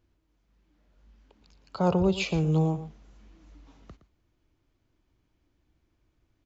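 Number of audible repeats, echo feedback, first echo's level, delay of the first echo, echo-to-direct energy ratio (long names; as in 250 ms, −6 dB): 1, repeats not evenly spaced, −14.0 dB, 116 ms, −14.0 dB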